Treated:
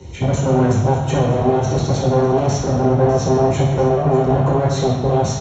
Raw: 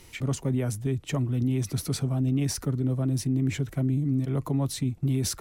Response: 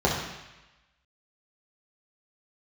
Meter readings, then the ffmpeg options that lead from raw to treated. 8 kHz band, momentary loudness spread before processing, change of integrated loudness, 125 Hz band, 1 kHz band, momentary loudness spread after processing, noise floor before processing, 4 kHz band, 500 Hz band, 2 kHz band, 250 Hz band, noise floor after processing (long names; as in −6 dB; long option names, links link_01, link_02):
+4.5 dB, 3 LU, +11.0 dB, +8.5 dB, +24.5 dB, 3 LU, −50 dBFS, +6.5 dB, +20.0 dB, +11.0 dB, +8.0 dB, −25 dBFS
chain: -filter_complex "[0:a]equalizer=frequency=1600:width=0.64:gain=-8,acrossover=split=150[link_01][link_02];[link_01]acompressor=threshold=-43dB:ratio=6[link_03];[link_03][link_02]amix=inputs=2:normalize=0,alimiter=level_in=2dB:limit=-24dB:level=0:latency=1:release=137,volume=-2dB,dynaudnorm=framelen=170:gausssize=3:maxgain=4dB,aresample=16000,aeval=exprs='0.0299*(abs(mod(val(0)/0.0299+3,4)-2)-1)':channel_layout=same,aresample=44100,asuperstop=centerf=4800:order=4:qfactor=6.2,aecho=1:1:598:0.188[link_04];[1:a]atrim=start_sample=2205[link_05];[link_04][link_05]afir=irnorm=-1:irlink=0"